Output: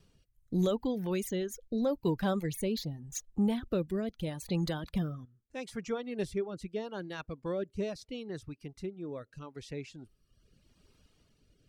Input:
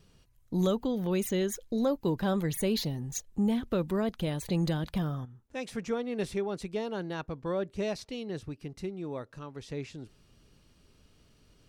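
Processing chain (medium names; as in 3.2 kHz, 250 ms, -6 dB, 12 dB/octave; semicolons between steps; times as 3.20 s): reverb removal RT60 1 s; rotary cabinet horn 0.8 Hz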